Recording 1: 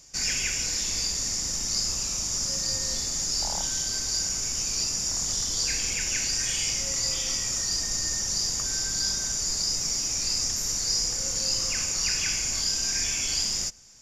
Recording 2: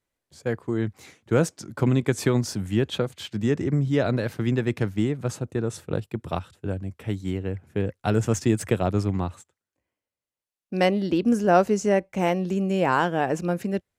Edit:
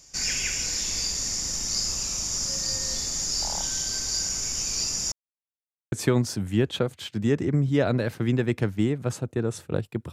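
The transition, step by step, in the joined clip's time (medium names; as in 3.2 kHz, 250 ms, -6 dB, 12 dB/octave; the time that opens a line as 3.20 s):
recording 1
5.12–5.92 s: mute
5.92 s: go over to recording 2 from 2.11 s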